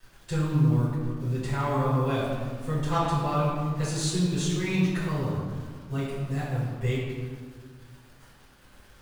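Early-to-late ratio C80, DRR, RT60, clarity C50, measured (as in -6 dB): 1.0 dB, -11.5 dB, 1.7 s, -0.5 dB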